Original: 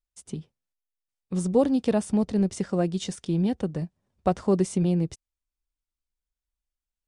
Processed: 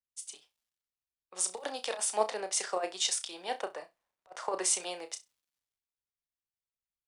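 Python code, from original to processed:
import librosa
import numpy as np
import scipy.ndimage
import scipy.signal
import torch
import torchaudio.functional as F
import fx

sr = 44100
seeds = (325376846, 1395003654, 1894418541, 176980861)

p1 = scipy.signal.sosfilt(scipy.signal.butter(4, 660.0, 'highpass', fs=sr, output='sos'), x)
p2 = fx.over_compress(p1, sr, threshold_db=-35.0, ratio=-0.5)
p3 = fx.dmg_crackle(p2, sr, seeds[0], per_s=470.0, level_db=-65.0)
p4 = p3 + fx.room_flutter(p3, sr, wall_m=5.6, rt60_s=0.21, dry=0)
p5 = fx.band_widen(p4, sr, depth_pct=70)
y = p5 * 10.0 ** (2.5 / 20.0)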